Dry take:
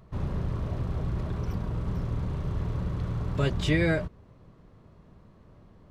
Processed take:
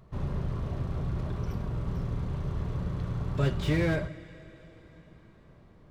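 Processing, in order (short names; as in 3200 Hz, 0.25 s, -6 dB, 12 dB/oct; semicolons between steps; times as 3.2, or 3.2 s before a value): two-slope reverb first 0.45 s, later 4.6 s, from -18 dB, DRR 9.5 dB; slew limiter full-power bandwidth 55 Hz; gain -2 dB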